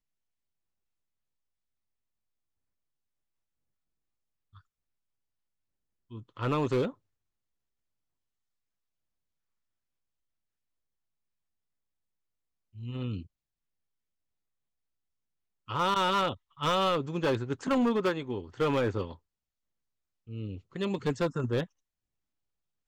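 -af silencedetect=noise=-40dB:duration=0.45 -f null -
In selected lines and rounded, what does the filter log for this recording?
silence_start: 0.00
silence_end: 6.12 | silence_duration: 6.12
silence_start: 6.91
silence_end: 12.77 | silence_duration: 5.87
silence_start: 13.22
silence_end: 15.69 | silence_duration: 2.47
silence_start: 19.13
silence_end: 20.29 | silence_duration: 1.16
silence_start: 21.65
silence_end: 22.87 | silence_duration: 1.23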